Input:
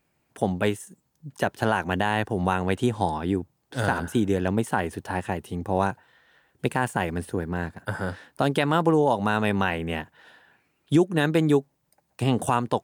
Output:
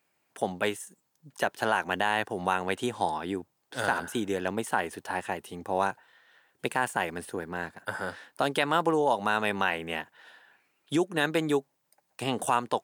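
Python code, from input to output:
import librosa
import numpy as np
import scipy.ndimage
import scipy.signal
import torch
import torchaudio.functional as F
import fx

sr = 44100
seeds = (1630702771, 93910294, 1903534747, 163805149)

y = fx.highpass(x, sr, hz=620.0, slope=6)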